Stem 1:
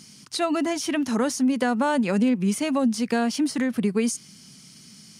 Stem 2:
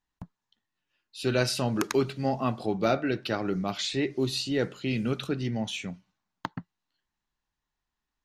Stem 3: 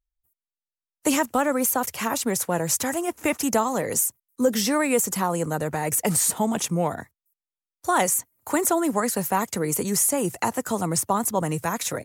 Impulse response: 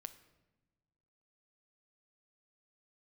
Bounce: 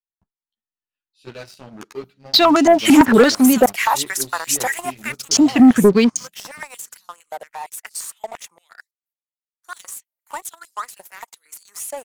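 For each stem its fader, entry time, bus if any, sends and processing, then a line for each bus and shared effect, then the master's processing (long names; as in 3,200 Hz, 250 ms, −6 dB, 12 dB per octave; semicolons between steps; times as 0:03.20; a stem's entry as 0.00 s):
+2.0 dB, 2.00 s, muted 0:03.66–0:05.31, no send, noise gate −41 dBFS, range −28 dB; low-pass on a step sequencer 8.9 Hz 280–6,700 Hz
−18.5 dB, 0.00 s, no send, automatic gain control gain up to 8 dB; string-ensemble chorus
0:04.82 −4.5 dB → 0:05.31 −16 dB, 1.80 s, no send, high-pass on a step sequencer 8.7 Hz 670–4,600 Hz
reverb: not used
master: leveller curve on the samples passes 2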